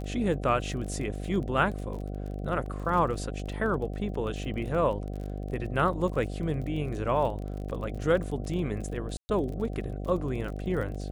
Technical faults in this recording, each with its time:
buzz 50 Hz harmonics 15 -35 dBFS
crackle 33 per s -36 dBFS
2.66 s: dropout 2.5 ms
9.17–9.29 s: dropout 120 ms

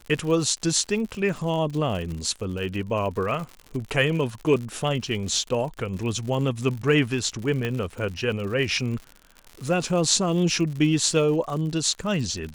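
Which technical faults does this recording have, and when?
crackle 100 per s -32 dBFS
7.65 s: pop -15 dBFS

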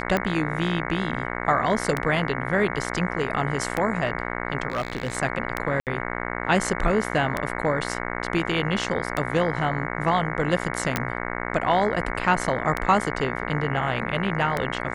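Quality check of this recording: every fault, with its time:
buzz 60 Hz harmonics 37 -30 dBFS
tick 33 1/3 rpm -10 dBFS
4.70–5.17 s: clipped -21 dBFS
5.80–5.87 s: dropout 68 ms
10.96 s: pop -7 dBFS

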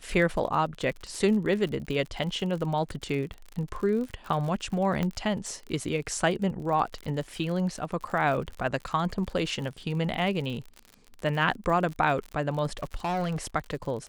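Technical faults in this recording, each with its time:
crackle 53 per s -34 dBFS
5.03 s: pop -16 dBFS
12.83–13.46 s: clipped -25 dBFS

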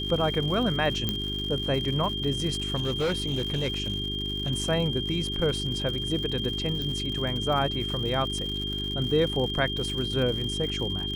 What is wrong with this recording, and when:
crackle 130 per s -33 dBFS
hum 50 Hz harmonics 8 -34 dBFS
whine 3.2 kHz -31 dBFS
1.09 s: pop -12 dBFS
2.75–4.51 s: clipped -22.5 dBFS
6.82 s: pop -20 dBFS

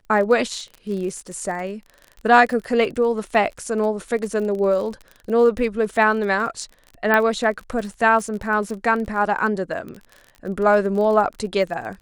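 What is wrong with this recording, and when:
crackle 31 per s -29 dBFS
7.14 s: pop -6 dBFS

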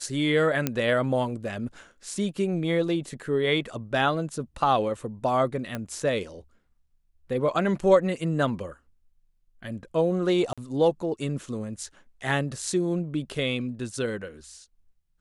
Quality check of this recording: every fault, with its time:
0.67 s: pop -9 dBFS
5.75 s: pop -17 dBFS
10.53–10.58 s: dropout 46 ms

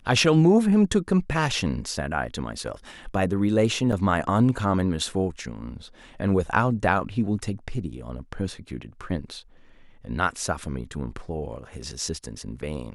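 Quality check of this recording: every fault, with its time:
3.92–3.93 s: dropout 5.8 ms

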